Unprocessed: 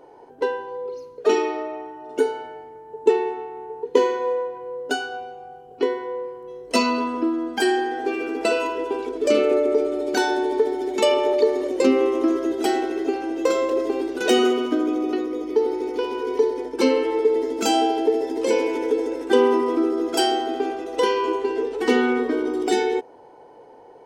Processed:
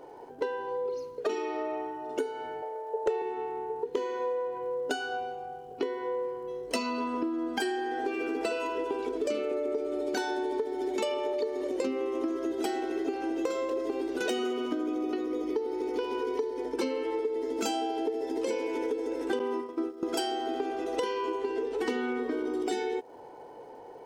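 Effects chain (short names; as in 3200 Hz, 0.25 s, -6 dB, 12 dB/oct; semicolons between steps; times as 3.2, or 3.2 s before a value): 19.39–20.03 gate -19 dBFS, range -18 dB; compressor 8:1, threshold -28 dBFS, peak gain reduction 17 dB; crackle 390/s -61 dBFS; 2.62–3.22 resonant high-pass 560 Hz, resonance Q 6; hard clip -19 dBFS, distortion -30 dB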